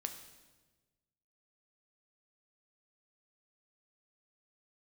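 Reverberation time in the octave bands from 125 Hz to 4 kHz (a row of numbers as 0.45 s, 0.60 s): 1.7 s, 1.5 s, 1.4 s, 1.2 s, 1.1 s, 1.1 s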